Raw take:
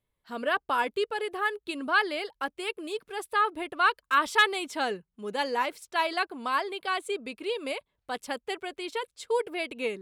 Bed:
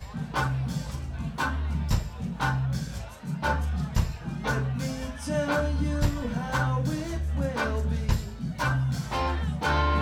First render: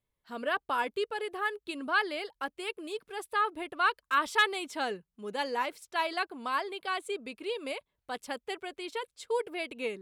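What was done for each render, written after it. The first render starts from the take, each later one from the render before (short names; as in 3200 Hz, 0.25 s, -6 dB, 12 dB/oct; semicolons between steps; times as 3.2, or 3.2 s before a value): gain -3.5 dB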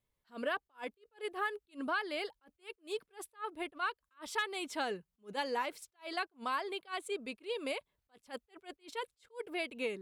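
compressor 6:1, threshold -31 dBFS, peak gain reduction 11.5 dB; attack slew limiter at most 300 dB/s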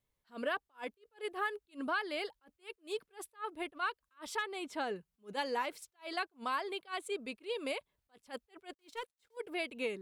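4.36–4.96 high shelf 2400 Hz -7 dB; 8.73–9.37 G.711 law mismatch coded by A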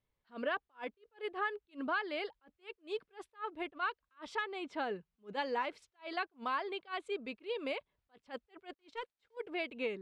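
LPF 3600 Hz 12 dB/oct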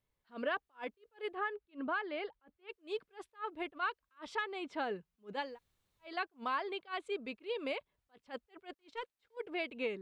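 1.35–2.69 air absorption 250 m; 5.47–6.09 room tone, crossfade 0.24 s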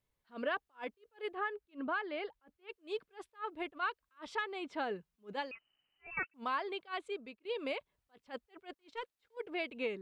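5.51–6.34 inverted band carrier 3000 Hz; 7.01–7.45 fade out, to -17 dB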